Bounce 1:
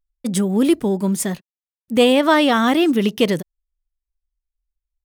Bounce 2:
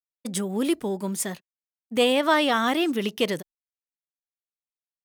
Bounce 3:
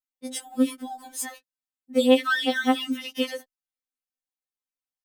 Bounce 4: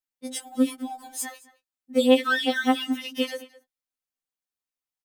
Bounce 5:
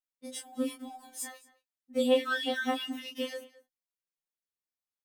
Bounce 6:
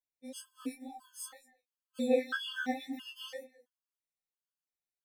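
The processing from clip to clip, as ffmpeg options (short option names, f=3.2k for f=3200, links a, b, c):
-af "agate=range=-33dB:threshold=-26dB:ratio=3:detection=peak,lowshelf=f=300:g=-9.5,volume=-4dB"
-af "afftfilt=real='re*3.46*eq(mod(b,12),0)':imag='im*3.46*eq(mod(b,12),0)':win_size=2048:overlap=0.75"
-filter_complex "[0:a]asplit=2[a][b];[b]adelay=215.7,volume=-19dB,highshelf=f=4k:g=-4.85[c];[a][c]amix=inputs=2:normalize=0"
-filter_complex "[0:a]asplit=2[a][b];[b]adelay=25,volume=-2.5dB[c];[a][c]amix=inputs=2:normalize=0,volume=-9dB"
-af "flanger=delay=16.5:depth=7.7:speed=2,afftfilt=real='re*gt(sin(2*PI*1.5*pts/sr)*(1-2*mod(floor(b*sr/1024/870),2)),0)':imag='im*gt(sin(2*PI*1.5*pts/sr)*(1-2*mod(floor(b*sr/1024/870),2)),0)':win_size=1024:overlap=0.75"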